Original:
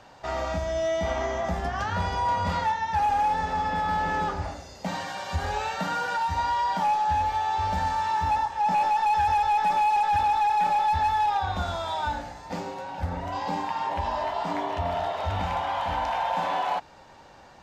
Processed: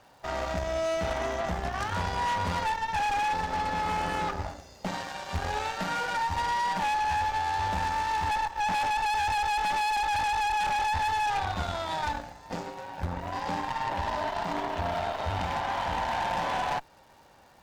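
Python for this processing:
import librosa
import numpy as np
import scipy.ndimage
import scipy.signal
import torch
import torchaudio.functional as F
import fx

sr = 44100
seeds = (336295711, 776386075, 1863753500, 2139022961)

y = fx.dmg_crackle(x, sr, seeds[0], per_s=570.0, level_db=-47.0)
y = fx.cheby_harmonics(y, sr, harmonics=(3, 4, 5, 7), levels_db=(-9, -18, -9, -15), full_scale_db=-17.0)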